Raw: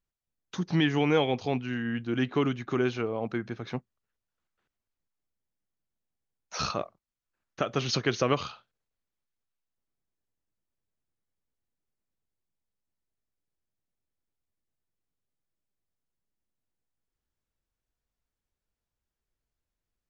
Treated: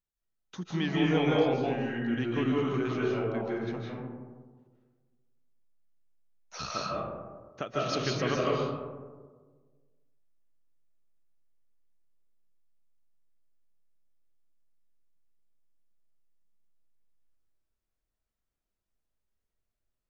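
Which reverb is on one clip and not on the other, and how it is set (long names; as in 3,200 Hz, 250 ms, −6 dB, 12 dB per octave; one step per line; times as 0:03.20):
comb and all-pass reverb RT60 1.5 s, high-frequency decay 0.3×, pre-delay 115 ms, DRR −4.5 dB
level −7 dB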